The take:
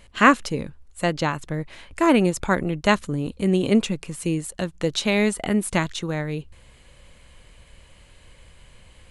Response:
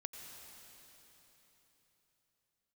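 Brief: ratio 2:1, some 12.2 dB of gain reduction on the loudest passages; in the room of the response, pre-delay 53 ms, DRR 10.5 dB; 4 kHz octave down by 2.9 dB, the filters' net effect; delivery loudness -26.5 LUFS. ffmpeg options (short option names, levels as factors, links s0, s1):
-filter_complex "[0:a]equalizer=f=4000:t=o:g=-4,acompressor=threshold=0.0251:ratio=2,asplit=2[s0][s1];[1:a]atrim=start_sample=2205,adelay=53[s2];[s1][s2]afir=irnorm=-1:irlink=0,volume=0.422[s3];[s0][s3]amix=inputs=2:normalize=0,volume=1.68"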